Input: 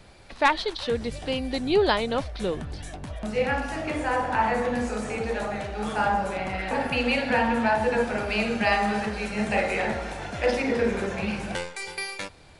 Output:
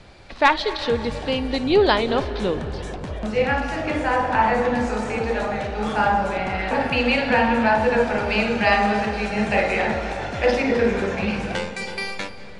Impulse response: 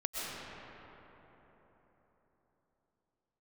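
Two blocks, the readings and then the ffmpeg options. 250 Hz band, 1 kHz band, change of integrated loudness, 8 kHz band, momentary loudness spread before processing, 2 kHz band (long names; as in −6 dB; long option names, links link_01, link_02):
+4.5 dB, +5.0 dB, +5.0 dB, −0.5 dB, 9 LU, +5.0 dB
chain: -filter_complex "[0:a]lowpass=6300,asplit=2[link_01][link_02];[1:a]atrim=start_sample=2205,adelay=55[link_03];[link_02][link_03]afir=irnorm=-1:irlink=0,volume=-16.5dB[link_04];[link_01][link_04]amix=inputs=2:normalize=0,volume=4.5dB"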